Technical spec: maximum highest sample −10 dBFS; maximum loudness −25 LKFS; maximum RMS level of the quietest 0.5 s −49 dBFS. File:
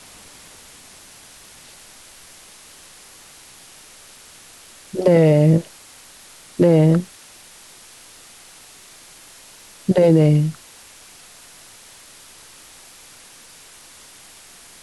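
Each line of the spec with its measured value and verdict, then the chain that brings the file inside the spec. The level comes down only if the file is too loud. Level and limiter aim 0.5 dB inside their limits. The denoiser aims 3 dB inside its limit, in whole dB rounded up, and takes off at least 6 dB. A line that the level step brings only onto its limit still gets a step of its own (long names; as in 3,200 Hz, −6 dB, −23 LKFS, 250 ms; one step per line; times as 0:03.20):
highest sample −4.5 dBFS: out of spec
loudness −16.5 LKFS: out of spec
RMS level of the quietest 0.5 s −45 dBFS: out of spec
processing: level −9 dB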